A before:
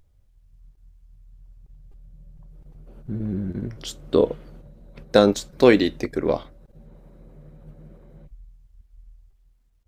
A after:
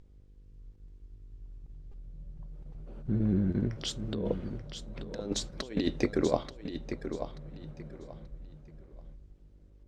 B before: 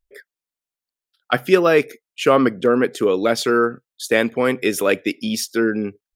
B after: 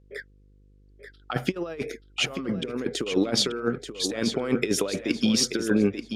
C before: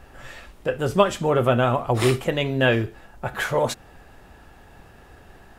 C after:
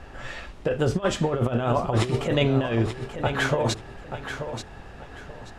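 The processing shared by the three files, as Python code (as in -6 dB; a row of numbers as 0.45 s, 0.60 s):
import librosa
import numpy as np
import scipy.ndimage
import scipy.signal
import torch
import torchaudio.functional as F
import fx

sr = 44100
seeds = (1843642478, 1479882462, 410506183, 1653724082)

y = scipy.signal.sosfilt(scipy.signal.butter(2, 6500.0, 'lowpass', fs=sr, output='sos'), x)
y = fx.dynamic_eq(y, sr, hz=1800.0, q=0.82, threshold_db=-34.0, ratio=4.0, max_db=-4)
y = fx.over_compress(y, sr, threshold_db=-23.0, ratio=-0.5)
y = fx.dmg_buzz(y, sr, base_hz=50.0, harmonics=10, level_db=-55.0, tilt_db=-7, odd_only=False)
y = fx.echo_feedback(y, sr, ms=883, feedback_pct=25, wet_db=-9)
y = librosa.util.normalize(y) * 10.0 ** (-9 / 20.0)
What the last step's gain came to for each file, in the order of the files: -5.0 dB, -1.5 dB, +1.0 dB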